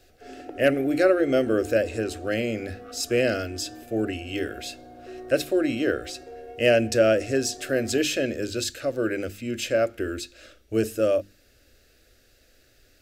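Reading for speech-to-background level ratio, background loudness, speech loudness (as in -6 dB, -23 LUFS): 18.0 dB, -43.0 LUFS, -25.0 LUFS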